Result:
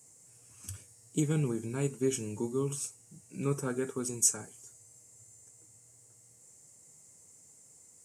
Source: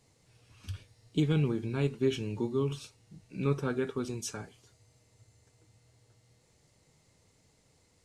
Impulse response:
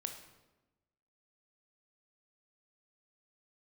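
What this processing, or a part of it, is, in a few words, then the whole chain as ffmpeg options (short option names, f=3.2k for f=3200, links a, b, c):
budget condenser microphone: -af "highpass=110,highshelf=f=5.5k:t=q:w=3:g=13,volume=-1.5dB"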